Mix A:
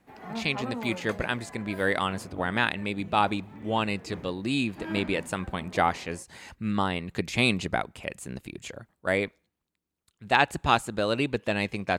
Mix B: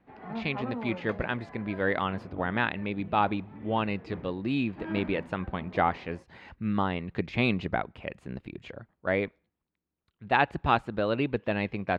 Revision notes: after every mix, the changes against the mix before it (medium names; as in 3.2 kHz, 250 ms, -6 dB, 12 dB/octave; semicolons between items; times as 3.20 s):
master: add distance through air 330 m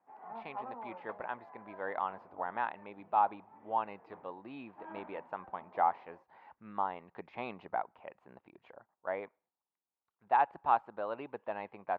master: add band-pass filter 880 Hz, Q 2.9